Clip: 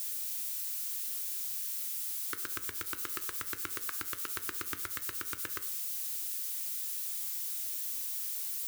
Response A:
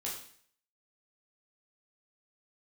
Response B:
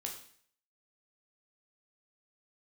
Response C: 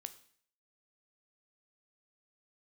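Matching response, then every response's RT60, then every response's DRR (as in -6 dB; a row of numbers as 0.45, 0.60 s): C; 0.55, 0.55, 0.55 s; -5.0, 0.5, 10.5 dB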